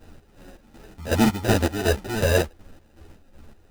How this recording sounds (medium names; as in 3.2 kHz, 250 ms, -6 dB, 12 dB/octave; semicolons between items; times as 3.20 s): aliases and images of a low sample rate 1.1 kHz, jitter 0%; chopped level 2.7 Hz, depth 65%, duty 50%; a shimmering, thickened sound